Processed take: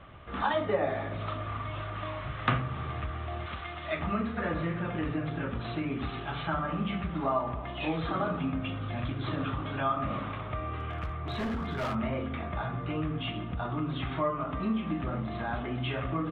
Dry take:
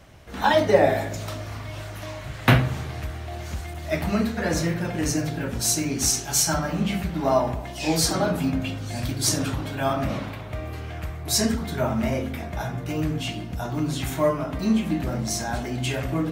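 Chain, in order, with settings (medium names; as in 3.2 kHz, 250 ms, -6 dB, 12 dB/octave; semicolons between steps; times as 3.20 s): 3.46–3.99 s: tilt EQ +2.5 dB/octave; resampled via 8 kHz; peaking EQ 1.2 kHz +14.5 dB 0.22 oct; 10.79–11.95 s: hard clipper -25 dBFS, distortion -20 dB; compression 2:1, threshold -31 dBFS, peak gain reduction 12 dB; trim -1.5 dB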